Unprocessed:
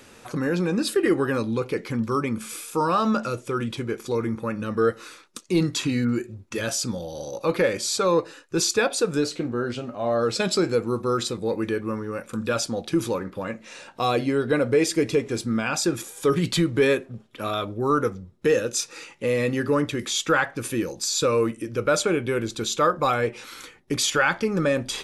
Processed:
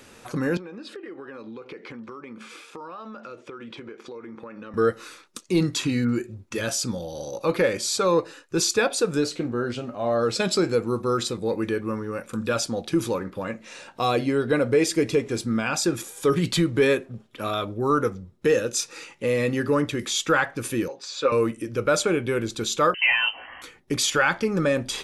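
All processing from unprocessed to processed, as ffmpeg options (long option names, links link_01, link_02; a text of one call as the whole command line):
ffmpeg -i in.wav -filter_complex "[0:a]asettb=1/sr,asplit=3[link_01][link_02][link_03];[link_01]atrim=end=0.574[link_04];[link_02]atrim=start=0.57:end=4.74,asetpts=PTS-STARTPTS,afade=type=in:duration=0.004:curve=qsin,afade=type=out:start_time=4.166:duration=0.004:curve=qsin,highpass=270,lowpass=3400,acompressor=threshold=-35dB:ratio=12:attack=3.2:release=140:knee=1:detection=peak[link_05];[link_03]atrim=start=4.736[link_06];[link_04][link_05]acrossfade=duration=0.004:curve1=hsin:curve2=qsin[link_07];[link_07][link_06]acrossfade=duration=0.004:curve1=qsin:curve2=hsin,asettb=1/sr,asplit=3[link_08][link_09][link_10];[link_08]atrim=end=20.884[link_11];[link_09]atrim=start=20.88:end=21.32,asetpts=PTS-STARTPTS,afade=type=in:duration=0.004:curve=qsin,afade=type=out:start_time=0.436:duration=0.004:curve=qsin,highpass=410,lowpass=2800,aecho=1:1:7.4:0.69,atrim=end_sample=19404[link_12];[link_10]atrim=start=21.316[link_13];[link_11][link_12]acrossfade=duration=0.004:curve1=hsin:curve2=qsin[link_14];[link_14][link_13]acrossfade=duration=0.004:curve1=qsin:curve2=hsin,asettb=1/sr,asplit=3[link_15][link_16][link_17];[link_15]atrim=end=22.944[link_18];[link_16]atrim=start=22.94:end=23.62,asetpts=PTS-STARTPTS,afade=type=in:duration=0.004:curve=qsin,afade=type=out:start_time=0.676:duration=0.004:curve=qsin,asplit=2[link_19][link_20];[link_20]adelay=18,volume=-3.5dB[link_21];[link_19][link_21]amix=inputs=2:normalize=0,atrim=end_sample=29988,lowpass=frequency=2700:width_type=q:width=0.5098,lowpass=frequency=2700:width_type=q:width=0.6013,lowpass=frequency=2700:width_type=q:width=0.9,lowpass=frequency=2700:width_type=q:width=2.563,afreqshift=-3200[link_22];[link_17]atrim=start=23.616[link_23];[link_18][link_22]acrossfade=duration=0.004:curve1=hsin:curve2=qsin[link_24];[link_24][link_23]acrossfade=duration=0.004:curve1=qsin:curve2=hsin" out.wav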